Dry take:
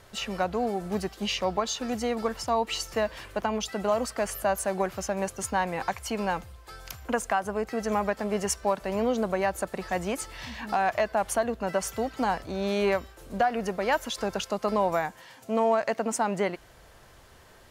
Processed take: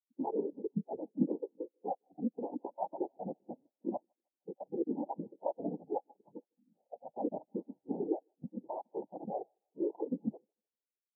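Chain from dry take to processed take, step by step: reverb removal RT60 1.2 s; FFT band-pass 130–660 Hz; level held to a coarse grid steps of 17 dB; noise-vocoded speech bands 8; vibrato 0.52 Hz 98 cents; granular stretch 0.63×, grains 189 ms; thinning echo 155 ms, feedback 67%, high-pass 190 Hz, level -17 dB; spectral contrast expander 2.5:1; trim +5 dB

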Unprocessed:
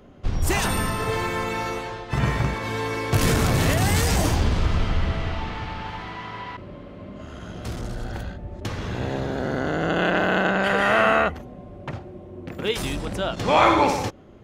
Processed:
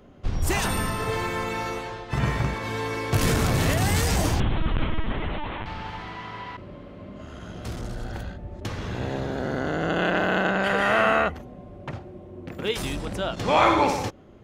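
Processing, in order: 4.40–5.66 s: LPC vocoder at 8 kHz pitch kept; trim -2 dB

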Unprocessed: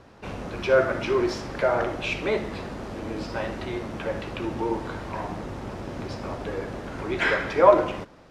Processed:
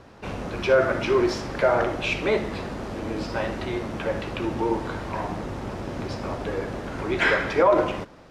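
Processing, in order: loudness maximiser +10.5 dB; trim -8 dB

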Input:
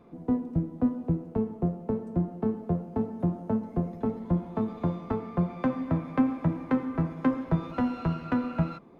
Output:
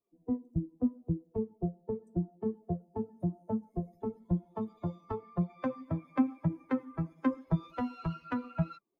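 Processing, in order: expander on every frequency bin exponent 2; trim -1.5 dB

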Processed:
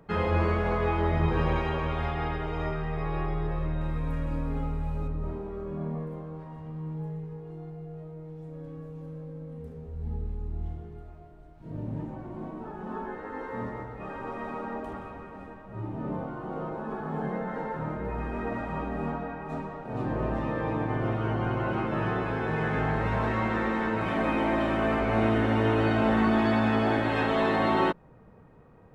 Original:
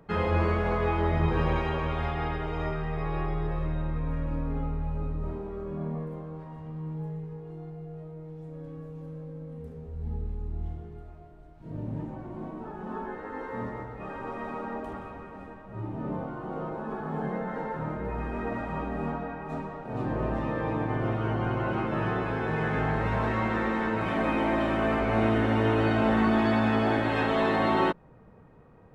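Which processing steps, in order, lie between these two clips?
3.81–5.08 s: treble shelf 3.8 kHz +11.5 dB

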